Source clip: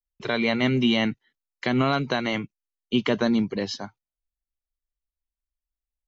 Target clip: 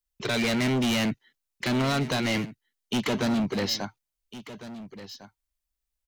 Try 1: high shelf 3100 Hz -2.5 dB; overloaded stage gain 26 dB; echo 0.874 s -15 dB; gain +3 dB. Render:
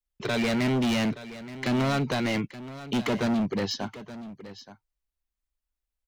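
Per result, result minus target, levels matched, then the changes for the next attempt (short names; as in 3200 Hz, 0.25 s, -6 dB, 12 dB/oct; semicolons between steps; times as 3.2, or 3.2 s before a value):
echo 0.53 s early; 8000 Hz band -4.0 dB
change: echo 1.404 s -15 dB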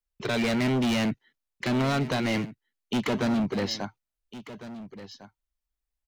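8000 Hz band -4.0 dB
change: high shelf 3100 Hz +5.5 dB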